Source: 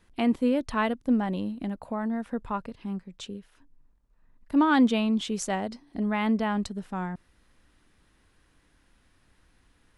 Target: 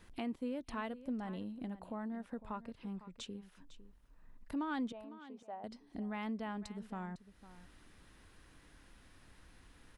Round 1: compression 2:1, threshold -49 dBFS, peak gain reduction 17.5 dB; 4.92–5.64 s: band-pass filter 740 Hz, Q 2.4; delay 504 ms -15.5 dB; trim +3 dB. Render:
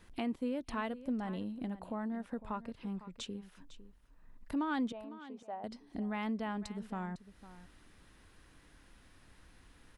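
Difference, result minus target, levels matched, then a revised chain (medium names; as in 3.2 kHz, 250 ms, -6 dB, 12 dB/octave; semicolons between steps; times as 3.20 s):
compression: peak gain reduction -3.5 dB
compression 2:1, threshold -56 dBFS, peak gain reduction 21 dB; 4.92–5.64 s: band-pass filter 740 Hz, Q 2.4; delay 504 ms -15.5 dB; trim +3 dB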